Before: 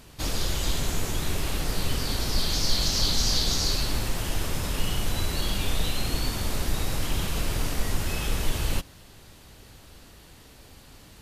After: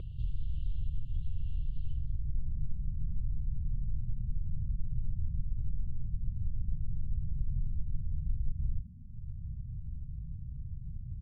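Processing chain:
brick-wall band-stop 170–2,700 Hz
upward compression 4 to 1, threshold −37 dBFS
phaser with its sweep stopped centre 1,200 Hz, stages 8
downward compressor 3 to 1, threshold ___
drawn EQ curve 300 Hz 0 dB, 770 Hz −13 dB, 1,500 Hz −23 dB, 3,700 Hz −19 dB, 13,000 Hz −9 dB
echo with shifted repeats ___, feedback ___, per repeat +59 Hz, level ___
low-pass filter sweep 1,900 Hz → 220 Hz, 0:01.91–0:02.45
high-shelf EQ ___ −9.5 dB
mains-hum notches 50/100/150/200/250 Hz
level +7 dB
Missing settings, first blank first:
−38 dBFS, 114 ms, 40%, −22.5 dB, 11,000 Hz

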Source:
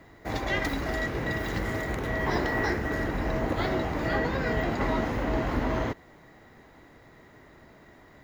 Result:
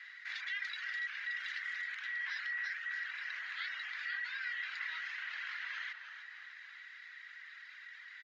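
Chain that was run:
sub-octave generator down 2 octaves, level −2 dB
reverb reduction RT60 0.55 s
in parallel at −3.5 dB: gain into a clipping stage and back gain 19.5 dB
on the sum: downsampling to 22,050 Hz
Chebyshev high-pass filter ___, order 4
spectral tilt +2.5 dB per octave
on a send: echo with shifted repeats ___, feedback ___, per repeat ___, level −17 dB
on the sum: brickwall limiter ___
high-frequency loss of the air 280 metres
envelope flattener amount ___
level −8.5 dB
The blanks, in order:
1,600 Hz, 306 ms, 35%, −71 Hz, −19.5 dBFS, 50%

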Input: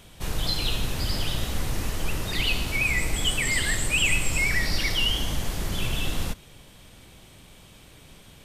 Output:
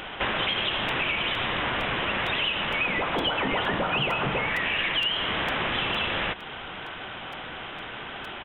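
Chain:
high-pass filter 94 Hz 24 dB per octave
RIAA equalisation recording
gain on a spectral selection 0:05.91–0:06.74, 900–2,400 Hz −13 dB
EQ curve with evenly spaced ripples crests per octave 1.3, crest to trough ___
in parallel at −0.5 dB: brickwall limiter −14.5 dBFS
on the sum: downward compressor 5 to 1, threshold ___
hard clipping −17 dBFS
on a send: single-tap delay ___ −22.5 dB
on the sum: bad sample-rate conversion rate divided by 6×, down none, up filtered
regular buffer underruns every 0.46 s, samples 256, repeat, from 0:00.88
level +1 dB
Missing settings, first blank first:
7 dB, −26 dBFS, 194 ms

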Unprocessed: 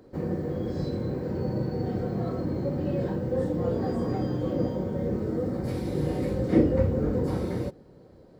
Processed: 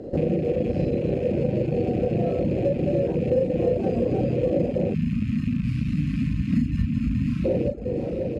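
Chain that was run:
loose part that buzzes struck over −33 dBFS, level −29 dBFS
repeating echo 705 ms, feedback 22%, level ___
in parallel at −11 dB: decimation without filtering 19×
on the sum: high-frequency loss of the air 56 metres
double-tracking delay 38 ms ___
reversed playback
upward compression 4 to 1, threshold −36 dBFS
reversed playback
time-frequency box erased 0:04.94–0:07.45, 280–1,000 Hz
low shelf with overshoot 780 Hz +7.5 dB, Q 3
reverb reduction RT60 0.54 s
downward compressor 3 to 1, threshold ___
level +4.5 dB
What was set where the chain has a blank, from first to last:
−12.5 dB, −4 dB, −28 dBFS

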